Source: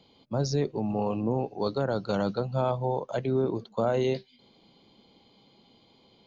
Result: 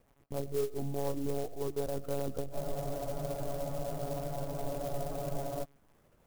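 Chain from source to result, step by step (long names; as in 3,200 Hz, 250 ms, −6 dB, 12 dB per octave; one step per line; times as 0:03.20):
spectral envelope exaggerated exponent 1.5
low-pass filter 1,100 Hz
parametric band 71 Hz −9.5 dB 1.2 octaves
bit-depth reduction 10 bits, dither none
flanger 0.4 Hz, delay 2.9 ms, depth 3.4 ms, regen +54%
soft clipping −22.5 dBFS, distortion −22 dB
one-pitch LPC vocoder at 8 kHz 140 Hz
convolution reverb RT60 0.80 s, pre-delay 60 ms, DRR 17.5 dB
frozen spectrum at 0:02.55, 3.08 s
converter with an unsteady clock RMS 0.06 ms
level −1 dB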